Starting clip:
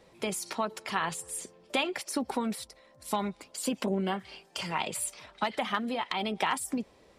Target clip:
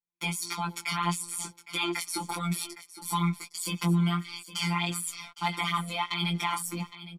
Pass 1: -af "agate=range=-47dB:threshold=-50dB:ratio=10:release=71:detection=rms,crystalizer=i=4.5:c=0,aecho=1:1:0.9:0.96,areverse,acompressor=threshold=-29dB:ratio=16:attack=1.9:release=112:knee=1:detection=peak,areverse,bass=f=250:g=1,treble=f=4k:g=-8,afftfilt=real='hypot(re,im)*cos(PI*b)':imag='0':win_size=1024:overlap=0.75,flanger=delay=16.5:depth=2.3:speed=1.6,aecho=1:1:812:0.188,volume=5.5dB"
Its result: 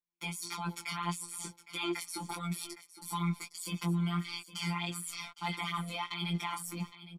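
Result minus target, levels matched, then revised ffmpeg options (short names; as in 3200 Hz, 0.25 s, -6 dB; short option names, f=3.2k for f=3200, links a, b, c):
compressor: peak gain reduction +7.5 dB
-af "agate=range=-47dB:threshold=-50dB:ratio=10:release=71:detection=rms,crystalizer=i=4.5:c=0,aecho=1:1:0.9:0.96,areverse,acompressor=threshold=-21dB:ratio=16:attack=1.9:release=112:knee=1:detection=peak,areverse,bass=f=250:g=1,treble=f=4k:g=-8,afftfilt=real='hypot(re,im)*cos(PI*b)':imag='0':win_size=1024:overlap=0.75,flanger=delay=16.5:depth=2.3:speed=1.6,aecho=1:1:812:0.188,volume=5.5dB"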